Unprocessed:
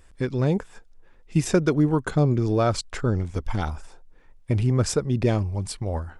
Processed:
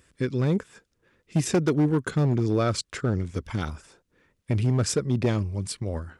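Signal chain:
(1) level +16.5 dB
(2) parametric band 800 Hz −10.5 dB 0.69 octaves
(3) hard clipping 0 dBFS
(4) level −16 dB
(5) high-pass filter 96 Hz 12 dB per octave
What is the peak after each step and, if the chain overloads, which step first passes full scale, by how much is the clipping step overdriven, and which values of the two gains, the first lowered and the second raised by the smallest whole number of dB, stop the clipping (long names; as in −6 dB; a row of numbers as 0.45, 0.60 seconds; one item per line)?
+9.0, +8.0, 0.0, −16.0, −12.0 dBFS
step 1, 8.0 dB
step 1 +8.5 dB, step 4 −8 dB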